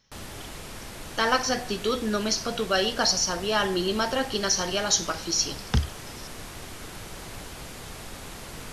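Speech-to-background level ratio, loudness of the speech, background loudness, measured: 14.0 dB, -25.5 LUFS, -39.5 LUFS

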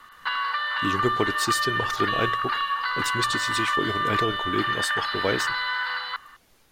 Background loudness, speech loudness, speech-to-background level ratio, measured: -25.5 LUFS, -29.0 LUFS, -3.5 dB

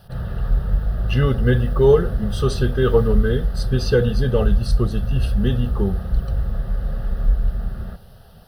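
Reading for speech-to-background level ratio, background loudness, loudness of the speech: 3.5 dB, -24.5 LUFS, -21.0 LUFS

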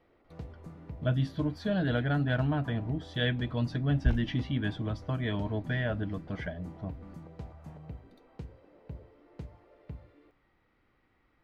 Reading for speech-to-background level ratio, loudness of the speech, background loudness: 15.5 dB, -31.5 LUFS, -47.0 LUFS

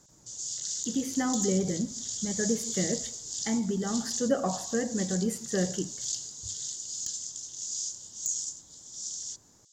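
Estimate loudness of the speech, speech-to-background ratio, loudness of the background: -31.5 LUFS, 2.5 dB, -34.0 LUFS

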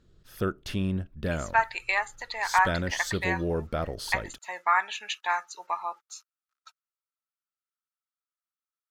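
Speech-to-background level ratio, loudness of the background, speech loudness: 3.5 dB, -32.0 LUFS, -28.5 LUFS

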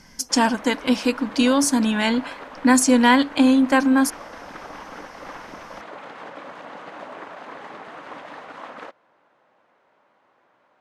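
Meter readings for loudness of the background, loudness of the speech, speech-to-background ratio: -38.5 LUFS, -19.0 LUFS, 19.5 dB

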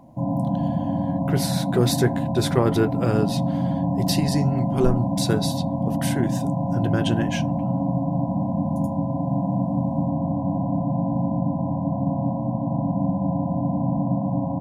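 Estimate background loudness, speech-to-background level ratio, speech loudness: -24.5 LUFS, -1.0 dB, -25.5 LUFS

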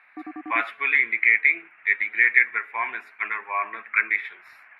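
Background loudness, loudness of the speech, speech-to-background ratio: -39.5 LUFS, -21.5 LUFS, 18.0 dB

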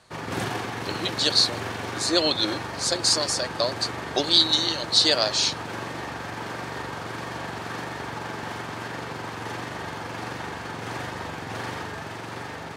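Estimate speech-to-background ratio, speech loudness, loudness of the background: 11.0 dB, -22.0 LUFS, -33.0 LUFS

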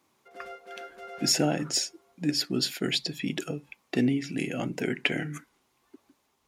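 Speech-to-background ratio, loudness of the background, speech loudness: 15.5 dB, -44.5 LUFS, -29.0 LUFS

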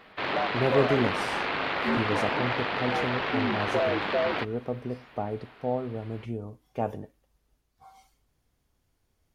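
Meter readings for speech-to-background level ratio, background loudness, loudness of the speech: -4.5 dB, -28.0 LUFS, -32.5 LUFS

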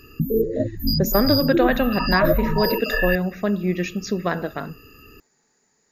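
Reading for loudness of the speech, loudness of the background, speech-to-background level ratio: -23.0 LUFS, -23.0 LUFS, 0.0 dB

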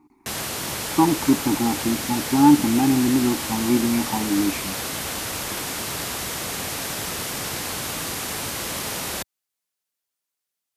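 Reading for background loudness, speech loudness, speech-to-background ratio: -27.0 LUFS, -21.0 LUFS, 6.0 dB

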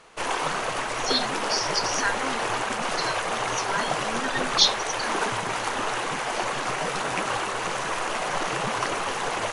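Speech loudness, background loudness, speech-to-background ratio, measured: -27.5 LUFS, -27.0 LUFS, -0.5 dB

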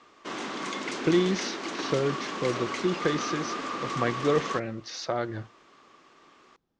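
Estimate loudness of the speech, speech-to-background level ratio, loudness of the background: -30.0 LUFS, 3.5 dB, -33.5 LUFS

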